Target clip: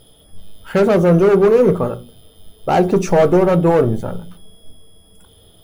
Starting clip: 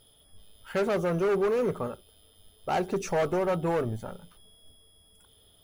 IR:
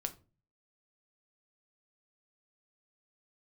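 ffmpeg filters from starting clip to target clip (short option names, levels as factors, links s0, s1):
-filter_complex "[0:a]asplit=2[s0][s1];[s1]tiltshelf=f=880:g=7.5[s2];[1:a]atrim=start_sample=2205,lowshelf=f=120:g=-5.5[s3];[s2][s3]afir=irnorm=-1:irlink=0,volume=1.41[s4];[s0][s4]amix=inputs=2:normalize=0,volume=1.78"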